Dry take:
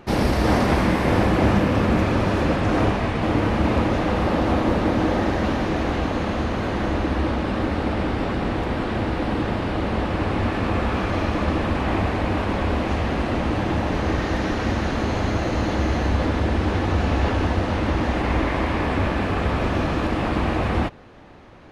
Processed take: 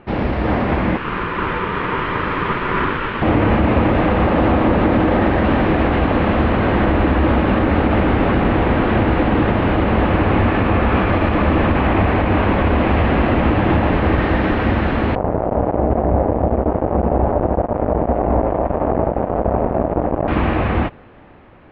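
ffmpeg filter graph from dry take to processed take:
-filter_complex "[0:a]asettb=1/sr,asplit=3[s0][s1][s2];[s0]atrim=end=0.974[s3];[s1]atrim=start=0.97:end=3.22,asetpts=PTS-STARTPTS,afade=t=in:d=0.004:c=qsin,afade=t=out:st=2.246:d=0.004:c=qsin,highpass=340,aeval=exprs='val(0)*sin(2*PI*690*n/s)':c=same[s4];[s2]atrim=start=3.216[s5];[s3][s4]acrossfade=d=0.004:c1=hsin:c2=qsin[s6];[s6][s5]acrossfade=d=0.004:c1=qsin:c2=hsin,asettb=1/sr,asplit=3[s7][s8][s9];[s7]atrim=end=15.154[s10];[s8]atrim=start=15.15:end=20.28,asetpts=PTS-STARTPTS,afade=t=in:d=0.004:c=qsin,afade=t=out:st=5.126:d=0.004:c=qsin,asplit=2[s11][s12];[s12]adelay=17,volume=0.562[s13];[s11][s13]amix=inputs=2:normalize=0,atrim=end_sample=226233,acrusher=bits=2:mix=0:aa=0.5,lowpass=f=670:t=q:w=2.2[s14];[s9]atrim=start=20.276[s15];[s10][s14]acrossfade=d=0.004:c1=hsin:c2=qsin[s16];[s16][s15]acrossfade=d=0.004:c1=qsin:c2=hsin,lowpass=f=3000:w=0.5412,lowpass=f=3000:w=1.3066,dynaudnorm=f=310:g=9:m=3.76,alimiter=level_in=1.88:limit=0.891:release=50:level=0:latency=1,volume=0.562"

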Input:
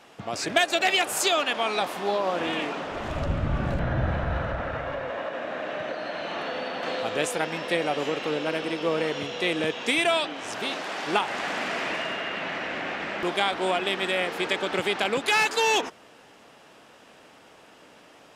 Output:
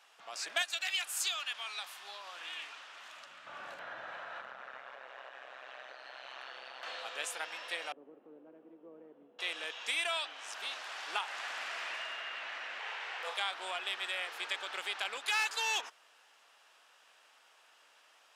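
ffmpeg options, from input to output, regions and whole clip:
-filter_complex "[0:a]asettb=1/sr,asplit=3[s0][s1][s2];[s0]atrim=end=0.624[s3];[s1]atrim=start=0.62:end=3.47,asetpts=PTS-STARTPTS,afade=t=in:d=0.004:c=qsin,afade=t=out:st=2.846:d=0.004:c=qsin,highpass=180,equalizer=f=510:t=o:w=2.6:g=-11.5[s4];[s2]atrim=start=3.466[s5];[s3][s4]acrossfade=d=0.004:c1=hsin:c2=qsin[s6];[s6][s5]acrossfade=d=0.004:c1=qsin:c2=hsin,asettb=1/sr,asplit=3[s7][s8][s9];[s7]atrim=end=4.414[s10];[s8]atrim=start=4.41:end=6.83,asetpts=PTS-STARTPTS,afade=t=in:d=0.004:c=qsin,afade=t=out:st=2.416:d=0.004:c=qsin,equalizer=f=69:w=0.5:g=7.5,tremolo=f=130:d=0.919[s11];[s9]atrim=start=6.826[s12];[s10][s11]acrossfade=d=0.004:c1=hsin:c2=qsin[s13];[s13][s12]acrossfade=d=0.004:c1=qsin:c2=hsin,asettb=1/sr,asplit=3[s14][s15][s16];[s14]atrim=end=7.924[s17];[s15]atrim=start=7.92:end=9.39,asetpts=PTS-STARTPTS,afade=t=in:d=0.004:c=qsin,afade=t=out:st=1.466:d=0.004:c=qsin,acontrast=76,asuperpass=centerf=220:order=4:qfactor=1.2[s18];[s16]atrim=start=9.386[s19];[s17][s18]acrossfade=d=0.004:c1=hsin:c2=qsin[s20];[s20][s19]acrossfade=d=0.004:c1=qsin:c2=hsin,asettb=1/sr,asplit=3[s21][s22][s23];[s21]atrim=end=12.794[s24];[s22]atrim=start=12.79:end=13.38,asetpts=PTS-STARTPTS,afade=t=in:d=0.004:c=qsin,afade=t=out:st=0.586:d=0.004:c=qsin,lowshelf=f=180:t=q:w=1.5:g=-9.5,afreqshift=150,asplit=2[s25][s26];[s26]adelay=34,volume=0.473[s27];[s25][s27]amix=inputs=2:normalize=0,atrim=end_sample=26019[s28];[s23]atrim=start=13.376[s29];[s24][s28]acrossfade=d=0.004:c1=hsin:c2=qsin[s30];[s30][s29]acrossfade=d=0.004:c1=qsin:c2=hsin,highpass=1100,equalizer=f=2100:t=o:w=0.38:g=-3,volume=0.422"

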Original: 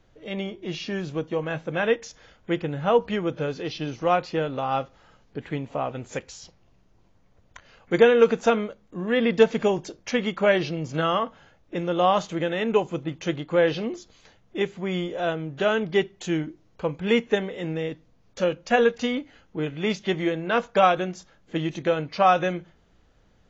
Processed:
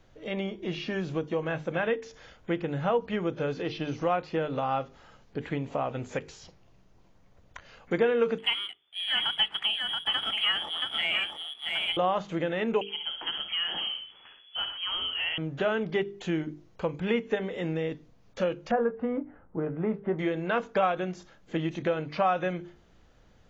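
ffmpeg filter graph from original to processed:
-filter_complex "[0:a]asettb=1/sr,asplit=3[s0][s1][s2];[s0]atrim=end=8.384[s3];[s1]atrim=start=8.38:end=11.97,asetpts=PTS-STARTPTS,afade=t=in:d=0.004:c=qsin,afade=t=out:st=3.586:d=0.004:c=qsin,lowpass=f=3000:t=q:w=0.5098,lowpass=f=3000:t=q:w=0.6013,lowpass=f=3000:t=q:w=0.9,lowpass=f=3000:t=q:w=2.563,afreqshift=-3500,adynamicsmooth=sensitivity=7.5:basefreq=1600,aecho=1:1:677:0.473,atrim=end_sample=158319[s4];[s2]atrim=start=11.966[s5];[s3][s4]acrossfade=d=0.004:c1=hsin:c2=qsin[s6];[s6][s5]acrossfade=d=0.004:c1=qsin:c2=hsin,asettb=1/sr,asplit=3[s7][s8][s9];[s7]atrim=end=12.814[s10];[s8]atrim=start=12.81:end=15.38,asetpts=PTS-STARTPTS,afade=t=in:d=0.004:c=qsin,afade=t=out:st=2.566:d=0.004:c=qsin,acompressor=threshold=0.0631:ratio=6:attack=3.2:release=140:knee=1:detection=peak,aecho=1:1:54|69|122:0.251|0.316|0.211,atrim=end_sample=113337,lowpass=f=2900:t=q:w=0.5098,lowpass=f=2900:t=q:w=0.6013,lowpass=f=2900:t=q:w=0.9,lowpass=f=2900:t=q:w=2.563,afreqshift=-3400[s11];[s9]atrim=start=15.376[s12];[s10][s11]acrossfade=d=0.004:c1=hsin:c2=qsin[s13];[s13][s12]acrossfade=d=0.004:c1=qsin:c2=hsin,asettb=1/sr,asplit=3[s14][s15][s16];[s14]atrim=end=18.714[s17];[s15]atrim=start=18.71:end=20.19,asetpts=PTS-STARTPTS,afade=t=in:d=0.004:c=qsin,afade=t=out:st=1.476:d=0.004:c=qsin,lowpass=f=1400:w=0.5412,lowpass=f=1400:w=1.3066,asplit=2[s18][s19];[s19]adelay=18,volume=0.251[s20];[s18][s20]amix=inputs=2:normalize=0,atrim=end_sample=65268[s21];[s16]atrim=start=20.186[s22];[s17][s21]acrossfade=d=0.004:c1=hsin:c2=qsin[s23];[s23][s22]acrossfade=d=0.004:c1=qsin:c2=hsin,acrossover=split=3300[s24][s25];[s25]acompressor=threshold=0.00224:ratio=4:attack=1:release=60[s26];[s24][s26]amix=inputs=2:normalize=0,bandreject=f=50:t=h:w=6,bandreject=f=100:t=h:w=6,bandreject=f=150:t=h:w=6,bandreject=f=200:t=h:w=6,bandreject=f=250:t=h:w=6,bandreject=f=300:t=h:w=6,bandreject=f=350:t=h:w=6,bandreject=f=400:t=h:w=6,bandreject=f=450:t=h:w=6,acompressor=threshold=0.0316:ratio=2,volume=1.19"

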